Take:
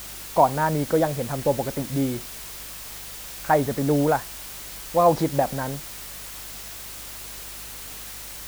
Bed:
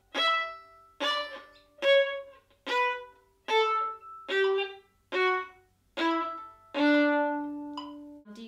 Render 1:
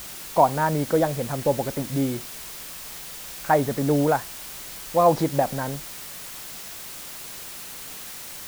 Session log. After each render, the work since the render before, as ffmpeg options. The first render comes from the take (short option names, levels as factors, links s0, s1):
-af "bandreject=f=50:t=h:w=4,bandreject=f=100:t=h:w=4"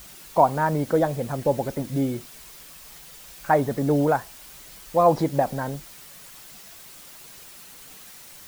-af "afftdn=nr=8:nf=-38"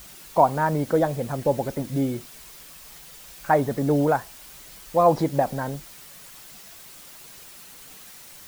-af anull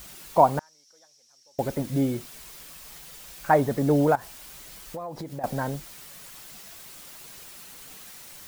-filter_complex "[0:a]asettb=1/sr,asplit=3[s0][s1][s2];[s0]atrim=end=0.594[s3];[s1]atrim=start=0.59:end=1.59,asetpts=PTS-STARTPTS,afade=t=in:d=0.004:c=qsin,afade=t=out:st=0.996:d=0.004:c=qsin,bandpass=f=5600:t=q:w=11[s4];[s2]atrim=start=1.586[s5];[s3][s4]acrossfade=d=0.004:c1=hsin:c2=qsin[s6];[s6][s5]acrossfade=d=0.004:c1=qsin:c2=hsin,asettb=1/sr,asplit=3[s7][s8][s9];[s7]atrim=end=4.154[s10];[s8]atrim=start=4.15:end=5.44,asetpts=PTS-STARTPTS,afade=t=in:d=0.004:c=qsin,afade=t=out:st=1.286:d=0.004:c=qsin,acompressor=threshold=0.0251:ratio=10:attack=3.2:release=140:knee=1:detection=peak[s11];[s9]atrim=start=5.436[s12];[s10][s11]acrossfade=d=0.004:c1=hsin:c2=qsin[s13];[s13][s12]acrossfade=d=0.004:c1=qsin:c2=hsin"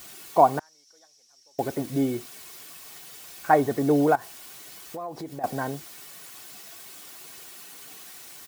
-af "highpass=130,aecho=1:1:2.7:0.37"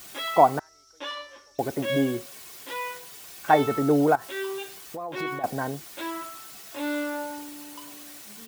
-filter_complex "[1:a]volume=0.501[s0];[0:a][s0]amix=inputs=2:normalize=0"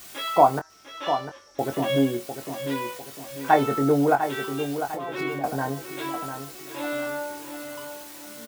-filter_complex "[0:a]asplit=2[s0][s1];[s1]adelay=22,volume=0.447[s2];[s0][s2]amix=inputs=2:normalize=0,asplit=2[s3][s4];[s4]adelay=700,lowpass=f=3000:p=1,volume=0.376,asplit=2[s5][s6];[s6]adelay=700,lowpass=f=3000:p=1,volume=0.43,asplit=2[s7][s8];[s8]adelay=700,lowpass=f=3000:p=1,volume=0.43,asplit=2[s9][s10];[s10]adelay=700,lowpass=f=3000:p=1,volume=0.43,asplit=2[s11][s12];[s12]adelay=700,lowpass=f=3000:p=1,volume=0.43[s13];[s3][s5][s7][s9][s11][s13]amix=inputs=6:normalize=0"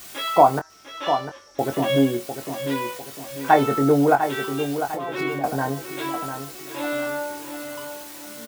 -af "volume=1.41,alimiter=limit=0.794:level=0:latency=1"